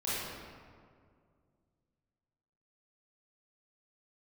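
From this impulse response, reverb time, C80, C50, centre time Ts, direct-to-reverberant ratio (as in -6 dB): 2.1 s, -1.5 dB, -4.5 dB, 0.138 s, -11.0 dB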